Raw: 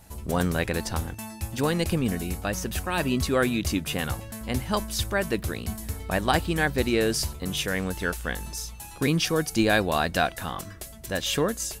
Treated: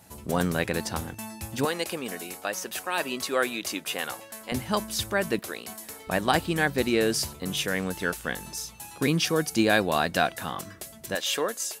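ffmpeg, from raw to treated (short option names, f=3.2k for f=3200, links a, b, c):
-af "asetnsamples=n=441:p=0,asendcmd='1.65 highpass f 440;4.52 highpass f 130;5.39 highpass f 410;6.07 highpass f 130;11.15 highpass f 440',highpass=120"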